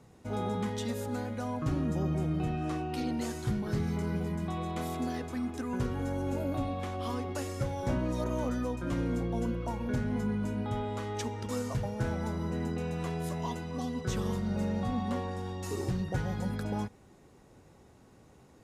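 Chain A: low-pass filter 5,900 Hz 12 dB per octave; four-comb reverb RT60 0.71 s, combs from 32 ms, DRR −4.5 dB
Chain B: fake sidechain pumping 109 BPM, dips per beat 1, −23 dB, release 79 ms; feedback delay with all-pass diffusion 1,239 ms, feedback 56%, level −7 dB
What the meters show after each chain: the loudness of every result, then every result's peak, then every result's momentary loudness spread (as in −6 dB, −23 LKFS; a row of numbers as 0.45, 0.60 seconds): −28.0, −33.5 LKFS; −14.0, −18.5 dBFS; 4, 5 LU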